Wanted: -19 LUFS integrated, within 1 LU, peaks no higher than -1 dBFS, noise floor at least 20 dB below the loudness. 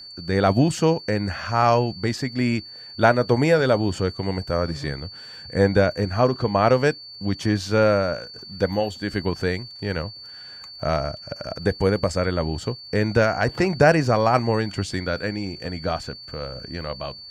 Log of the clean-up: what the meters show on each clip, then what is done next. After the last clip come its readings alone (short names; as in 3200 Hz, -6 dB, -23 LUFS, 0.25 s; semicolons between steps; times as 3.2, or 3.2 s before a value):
ticks 48/s; steady tone 4500 Hz; tone level -38 dBFS; loudness -22.5 LUFS; peak -3.0 dBFS; loudness target -19.0 LUFS
-> de-click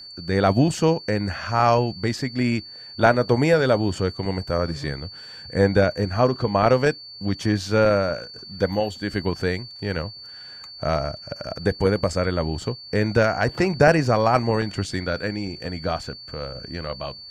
ticks 0.12/s; steady tone 4500 Hz; tone level -38 dBFS
-> notch 4500 Hz, Q 30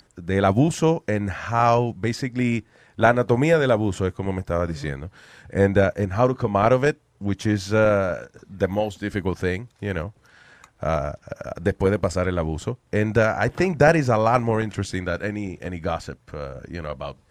steady tone none; loudness -22.5 LUFS; peak -3.0 dBFS; loudness target -19.0 LUFS
-> gain +3.5 dB; limiter -1 dBFS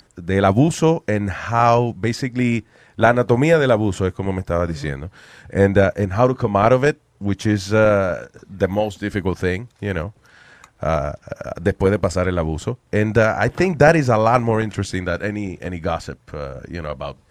loudness -19.0 LUFS; peak -1.0 dBFS; noise floor -57 dBFS